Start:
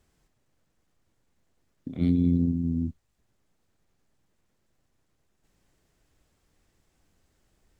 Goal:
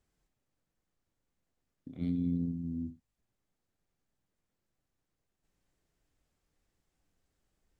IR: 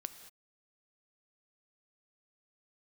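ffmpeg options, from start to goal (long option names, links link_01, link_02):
-filter_complex "[1:a]atrim=start_sample=2205,afade=type=out:start_time=0.23:duration=0.01,atrim=end_sample=10584,asetrate=88200,aresample=44100[link_01];[0:a][link_01]afir=irnorm=-1:irlink=0,volume=-1.5dB"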